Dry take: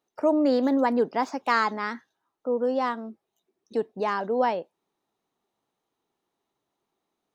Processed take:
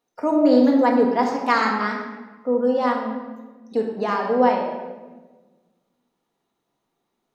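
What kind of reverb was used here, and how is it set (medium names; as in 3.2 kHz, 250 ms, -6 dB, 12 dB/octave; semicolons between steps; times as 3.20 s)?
simulated room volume 980 m³, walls mixed, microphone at 1.8 m; trim +1 dB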